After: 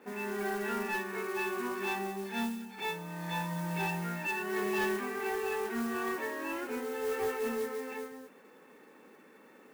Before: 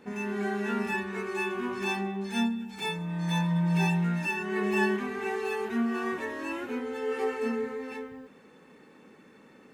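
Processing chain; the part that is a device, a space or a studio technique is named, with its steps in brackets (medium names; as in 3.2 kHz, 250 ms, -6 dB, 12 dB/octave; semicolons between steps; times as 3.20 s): carbon microphone (band-pass 300–2800 Hz; saturation -26 dBFS, distortion -17 dB; modulation noise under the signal 16 dB)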